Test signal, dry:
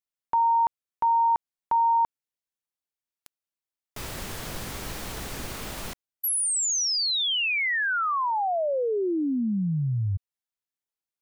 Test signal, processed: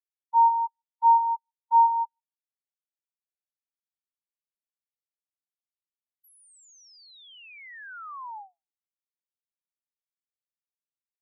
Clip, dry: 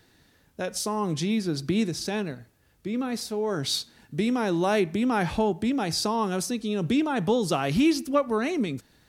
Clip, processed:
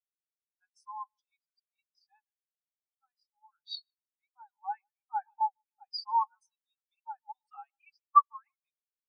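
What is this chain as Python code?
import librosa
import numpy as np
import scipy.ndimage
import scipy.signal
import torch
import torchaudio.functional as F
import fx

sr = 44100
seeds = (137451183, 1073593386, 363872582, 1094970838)

p1 = fx.spec_gate(x, sr, threshold_db=-30, keep='strong')
p2 = scipy.signal.sosfilt(scipy.signal.butter(12, 780.0, 'highpass', fs=sr, output='sos'), p1)
p3 = fx.high_shelf(p2, sr, hz=5400.0, db=5.5)
p4 = p3 + fx.echo_feedback(p3, sr, ms=151, feedback_pct=48, wet_db=-12.5, dry=0)
p5 = fx.spectral_expand(p4, sr, expansion=4.0)
y = F.gain(torch.from_numpy(p5), 4.0).numpy()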